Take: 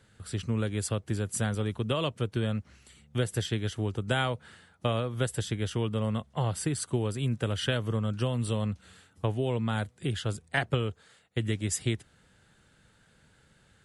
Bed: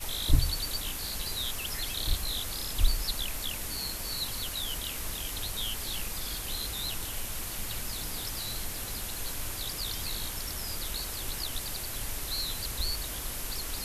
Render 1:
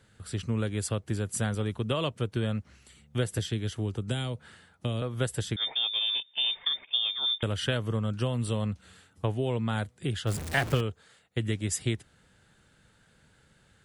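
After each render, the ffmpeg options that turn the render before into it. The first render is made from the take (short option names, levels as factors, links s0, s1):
-filter_complex "[0:a]asettb=1/sr,asplit=3[s0][s1][s2];[s0]atrim=end=3.384[s3];[s1]atrim=start=3.38:end=5.02,asetpts=PTS-STARTPTS,afade=t=in:d=0.004:c=qsin,afade=t=out:st=1.636:d=0.004:c=qsin,acrossover=split=430|3000[s4][s5][s6];[s5]acompressor=threshold=0.00794:ratio=6:attack=3.2:release=140:knee=2.83:detection=peak[s7];[s4][s7][s6]amix=inputs=3:normalize=0[s8];[s2]atrim=start=5.016[s9];[s3][s8]acrossfade=d=0.004:c1=hsin:c2=qsin[s10];[s10][s9]acrossfade=d=0.004:c1=qsin:c2=hsin,asettb=1/sr,asplit=3[s11][s12][s13];[s11]atrim=end=5.564[s14];[s12]atrim=start=5.56:end=7.43,asetpts=PTS-STARTPTS,afade=t=in:d=0.004:c=qsin,afade=t=out:st=1.866:d=0.004:c=qsin,lowpass=f=3100:t=q:w=0.5098,lowpass=f=3100:t=q:w=0.6013,lowpass=f=3100:t=q:w=0.9,lowpass=f=3100:t=q:w=2.563,afreqshift=-3700[s15];[s13]atrim=start=7.426[s16];[s14][s15]acrossfade=d=0.004:c1=hsin:c2=qsin[s17];[s17][s16]acrossfade=d=0.004:c1=qsin:c2=hsin,asettb=1/sr,asplit=3[s18][s19][s20];[s18]atrim=end=10.274[s21];[s19]atrim=start=10.27:end=10.81,asetpts=PTS-STARTPTS,afade=t=in:d=0.004:c=qsin,afade=t=out:st=0.536:d=0.004:c=qsin,aeval=exprs='val(0)+0.5*0.0282*sgn(val(0))':c=same[s22];[s20]atrim=start=10.806[s23];[s21][s22]acrossfade=d=0.004:c1=hsin:c2=qsin[s24];[s24][s23]acrossfade=d=0.004:c1=qsin:c2=hsin"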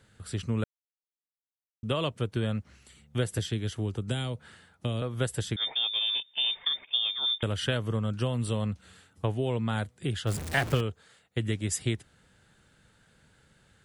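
-filter_complex "[0:a]asplit=3[s0][s1][s2];[s0]atrim=end=0.64,asetpts=PTS-STARTPTS,afade=t=out:st=0.636:d=0.004:c=hsin[s3];[s1]atrim=start=0.64:end=1.83,asetpts=PTS-STARTPTS,volume=0[s4];[s2]atrim=start=1.83,asetpts=PTS-STARTPTS,afade=t=in:d=0.004:c=hsin[s5];[s3][s4][s5]concat=n=3:v=0:a=1"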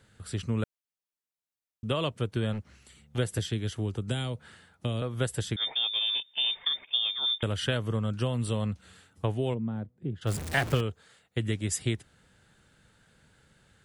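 -filter_complex "[0:a]asettb=1/sr,asplit=3[s0][s1][s2];[s0]atrim=end=2.534[s3];[s1]atrim=start=2.53:end=3.18,asetpts=PTS-STARTPTS,afade=t=in:d=0.004:c=qsin,afade=t=out:st=0.646:d=0.004:c=qsin,asoftclip=type=hard:threshold=0.0299[s4];[s2]atrim=start=3.176[s5];[s3][s4]acrossfade=d=0.004:c1=hsin:c2=qsin[s6];[s6][s5]acrossfade=d=0.004:c1=qsin:c2=hsin,asplit=3[s7][s8][s9];[s7]afade=t=out:st=9.53:d=0.02[s10];[s8]bandpass=f=210:t=q:w=1,afade=t=in:st=9.53:d=0.02,afade=t=out:st=10.21:d=0.02[s11];[s9]afade=t=in:st=10.21:d=0.02[s12];[s10][s11][s12]amix=inputs=3:normalize=0"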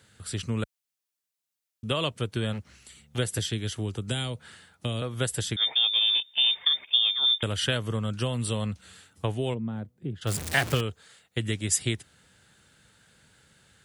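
-af "highpass=50,highshelf=f=2100:g=7.5"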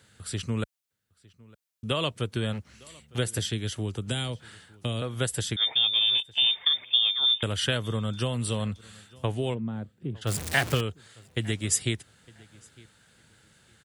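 -filter_complex "[0:a]asplit=2[s0][s1];[s1]adelay=907,lowpass=f=4600:p=1,volume=0.0631,asplit=2[s2][s3];[s3]adelay=907,lowpass=f=4600:p=1,volume=0.22[s4];[s0][s2][s4]amix=inputs=3:normalize=0"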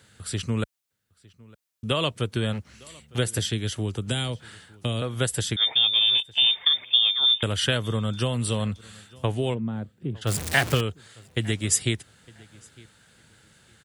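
-af "volume=1.41"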